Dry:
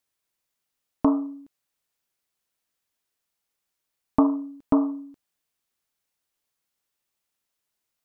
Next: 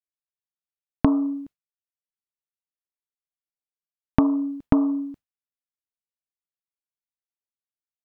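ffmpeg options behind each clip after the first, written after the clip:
-af "agate=range=-33dB:threshold=-45dB:ratio=3:detection=peak,acompressor=threshold=-26dB:ratio=6,bass=f=250:g=9,treble=f=4k:g=-6,volume=7dB"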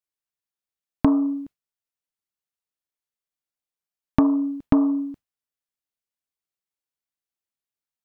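-af "asoftclip=type=tanh:threshold=-6.5dB,volume=2dB"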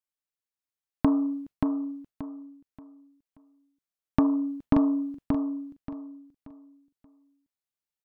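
-af "aecho=1:1:580|1160|1740|2320:0.596|0.167|0.0467|0.0131,volume=-4.5dB"

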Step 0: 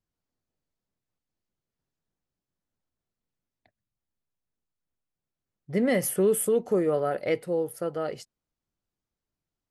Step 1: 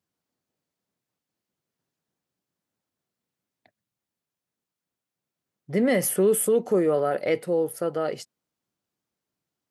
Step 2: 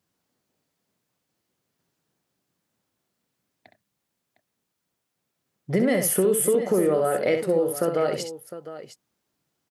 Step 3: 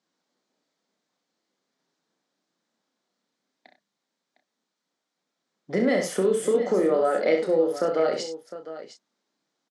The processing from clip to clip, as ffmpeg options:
-filter_complex "[0:a]highpass=140,asplit=2[a][b];[b]alimiter=limit=-23.5dB:level=0:latency=1:release=24,volume=-2.5dB[c];[a][c]amix=inputs=2:normalize=0"
-af "acompressor=threshold=-27dB:ratio=4,aecho=1:1:65|707:0.447|0.211,volume=7dB"
-filter_complex "[0:a]highpass=f=210:w=0.5412,highpass=f=210:w=1.3066,equalizer=f=370:t=q:w=4:g=-3,equalizer=f=2.7k:t=q:w=4:g=-5,equalizer=f=3.9k:t=q:w=4:g=3,lowpass=f=6.9k:w=0.5412,lowpass=f=6.9k:w=1.3066,asplit=2[a][b];[b]adelay=31,volume=-6.5dB[c];[a][c]amix=inputs=2:normalize=0"

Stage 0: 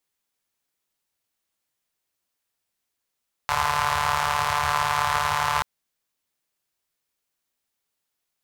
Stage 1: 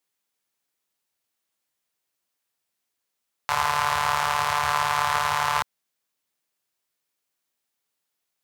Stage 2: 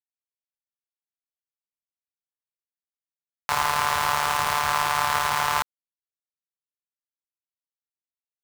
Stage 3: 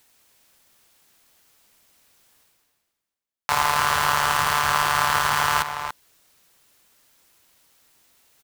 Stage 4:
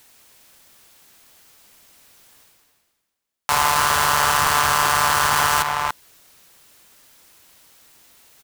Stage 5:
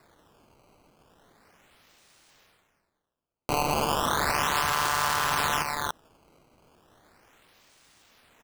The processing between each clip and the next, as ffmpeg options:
-af "highpass=f=130:p=1"
-af "acrusher=bits=4:mix=0:aa=0.000001"
-filter_complex "[0:a]areverse,acompressor=mode=upward:threshold=-36dB:ratio=2.5,areverse,asplit=2[a][b];[b]adelay=285.7,volume=-8dB,highshelf=f=4k:g=-6.43[c];[a][c]amix=inputs=2:normalize=0,volume=2.5dB"
-filter_complex "[0:a]acrossover=split=3900[a][b];[a]alimiter=limit=-12.5dB:level=0:latency=1[c];[c][b]amix=inputs=2:normalize=0,asoftclip=type=tanh:threshold=-16dB,volume=8dB"
-af "acrusher=samples=14:mix=1:aa=0.000001:lfo=1:lforange=22.4:lforate=0.35,volume=-8dB"

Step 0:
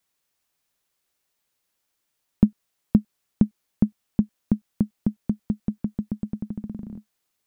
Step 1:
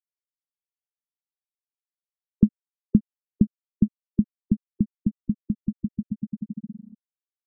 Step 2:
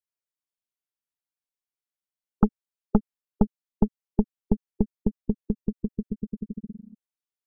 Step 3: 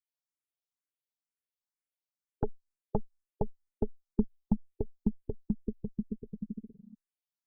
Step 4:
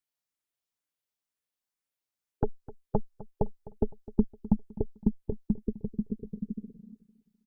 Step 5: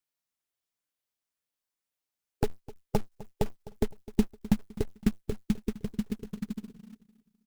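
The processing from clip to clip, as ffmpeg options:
-af "afftfilt=real='re*gte(hypot(re,im),0.2)':imag='im*gte(hypot(re,im),0.2)':win_size=1024:overlap=0.75"
-af "aeval=exprs='0.708*(cos(1*acos(clip(val(0)/0.708,-1,1)))-cos(1*PI/2))+0.0501*(cos(5*acos(clip(val(0)/0.708,-1,1)))-cos(5*PI/2))+0.158*(cos(6*acos(clip(val(0)/0.708,-1,1)))-cos(6*PI/2))':c=same,volume=-4dB"
-filter_complex "[0:a]asplit=2[a][b];[b]afreqshift=2.1[c];[a][c]amix=inputs=2:normalize=1,volume=-3.5dB"
-af "aecho=1:1:256|512|768:0.126|0.0504|0.0201,volume=3.5dB"
-af "acrusher=bits=4:mode=log:mix=0:aa=0.000001"

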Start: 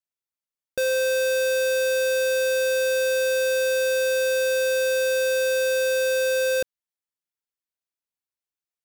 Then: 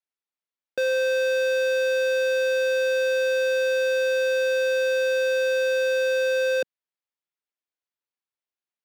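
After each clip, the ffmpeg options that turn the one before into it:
-filter_complex "[0:a]acrossover=split=190 4900:gain=0.178 1 0.178[a][b][c];[a][b][c]amix=inputs=3:normalize=0"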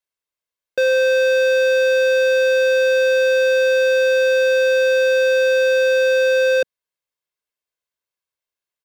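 -af "aecho=1:1:1.9:0.43,volume=4dB"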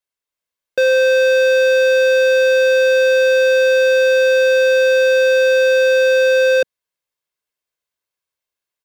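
-af "dynaudnorm=f=210:g=3:m=3dB"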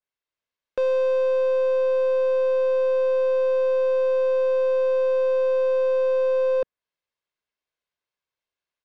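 -af "aeval=exprs='(tanh(6.31*val(0)+0.2)-tanh(0.2))/6.31':c=same,lowpass=4.5k,adynamicequalizer=threshold=0.00794:dfrequency=2000:dqfactor=0.7:tfrequency=2000:tqfactor=0.7:attack=5:release=100:ratio=0.375:range=3:mode=cutabove:tftype=highshelf,volume=-1.5dB"

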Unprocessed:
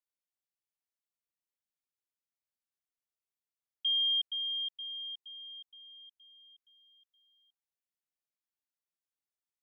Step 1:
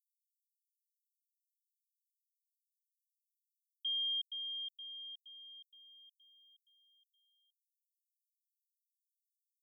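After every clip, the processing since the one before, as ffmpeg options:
-af "aderivative"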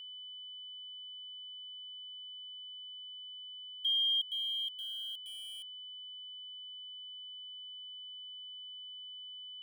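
-af "aeval=exprs='val(0)*gte(abs(val(0)),0.002)':c=same,aeval=exprs='val(0)+0.00316*sin(2*PI*3000*n/s)':c=same,volume=5.5dB"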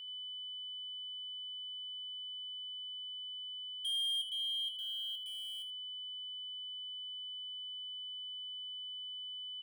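-filter_complex "[0:a]asoftclip=type=tanh:threshold=-34.5dB,asplit=2[a][b];[b]aecho=0:1:23|80:0.188|0.266[c];[a][c]amix=inputs=2:normalize=0"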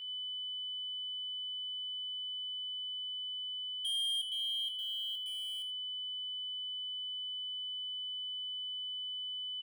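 -filter_complex "[0:a]asplit=2[a][b];[b]adelay=16,volume=-8.5dB[c];[a][c]amix=inputs=2:normalize=0,volume=1.5dB"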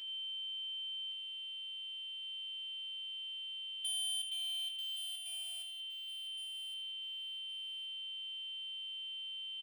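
-filter_complex "[0:a]afftfilt=real='hypot(re,im)*cos(PI*b)':imag='0':win_size=512:overlap=0.75,asplit=2[a][b];[b]aecho=0:1:1116|2232|3348:0.335|0.0871|0.0226[c];[a][c]amix=inputs=2:normalize=0,volume=6dB"

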